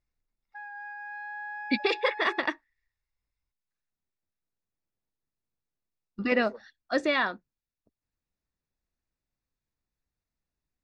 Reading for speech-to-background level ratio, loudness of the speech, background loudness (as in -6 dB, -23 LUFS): 12.0 dB, -28.0 LUFS, -40.0 LUFS